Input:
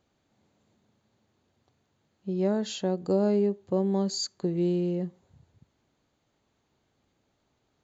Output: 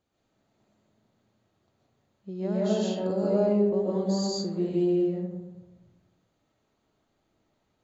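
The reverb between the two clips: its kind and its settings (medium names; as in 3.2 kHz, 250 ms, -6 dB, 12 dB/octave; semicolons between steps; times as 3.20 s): algorithmic reverb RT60 1.2 s, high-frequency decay 0.35×, pre-delay 95 ms, DRR -6 dB; trim -7 dB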